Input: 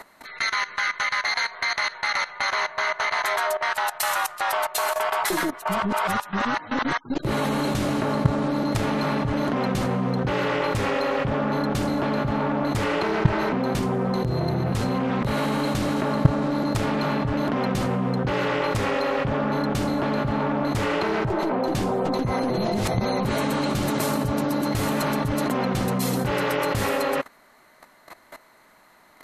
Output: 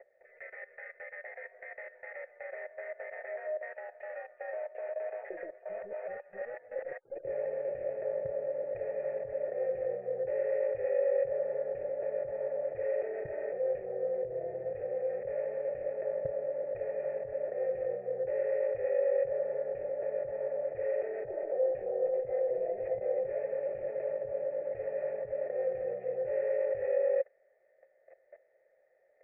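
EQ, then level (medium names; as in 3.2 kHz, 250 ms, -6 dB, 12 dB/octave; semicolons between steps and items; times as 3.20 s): cascade formant filter e; high-order bell 560 Hz +10 dB; static phaser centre 1 kHz, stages 6; -8.0 dB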